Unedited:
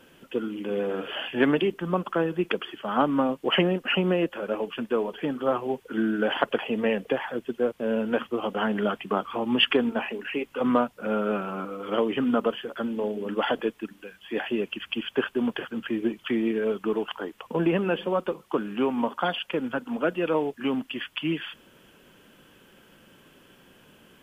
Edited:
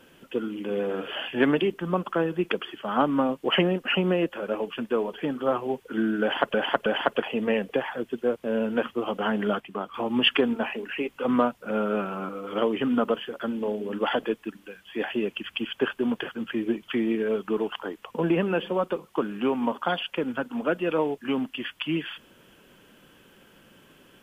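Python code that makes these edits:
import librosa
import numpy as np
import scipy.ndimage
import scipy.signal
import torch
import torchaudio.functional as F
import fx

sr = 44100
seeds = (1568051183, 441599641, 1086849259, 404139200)

y = fx.edit(x, sr, fx.repeat(start_s=6.22, length_s=0.32, count=3),
    fx.clip_gain(start_s=8.96, length_s=0.34, db=-6.0), tone=tone)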